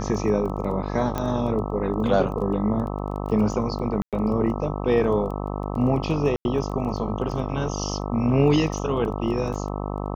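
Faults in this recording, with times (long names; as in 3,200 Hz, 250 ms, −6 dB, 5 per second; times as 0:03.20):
mains buzz 50 Hz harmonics 26 −29 dBFS
surface crackle 13 per second −32 dBFS
0:01.18: click −13 dBFS
0:04.02–0:04.13: drop-out 107 ms
0:06.36–0:06.45: drop-out 91 ms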